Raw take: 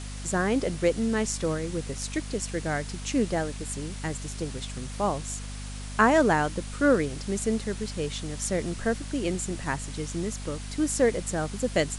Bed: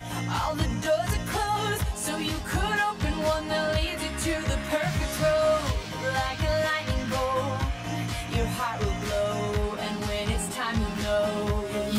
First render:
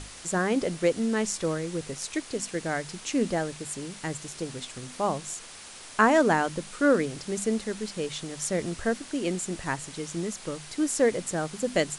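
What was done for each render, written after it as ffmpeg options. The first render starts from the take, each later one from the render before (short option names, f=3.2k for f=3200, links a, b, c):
-af "bandreject=f=50:t=h:w=6,bandreject=f=100:t=h:w=6,bandreject=f=150:t=h:w=6,bandreject=f=200:t=h:w=6,bandreject=f=250:t=h:w=6"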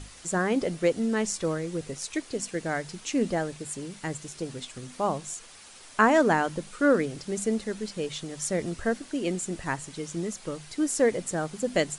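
-af "afftdn=nr=6:nf=-45"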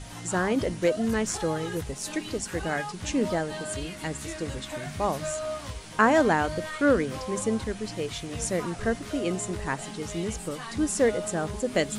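-filter_complex "[1:a]volume=-10dB[a];[0:a][a]amix=inputs=2:normalize=0"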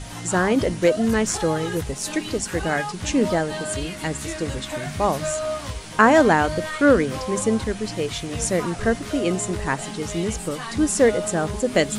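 -af "volume=6dB,alimiter=limit=-3dB:level=0:latency=1"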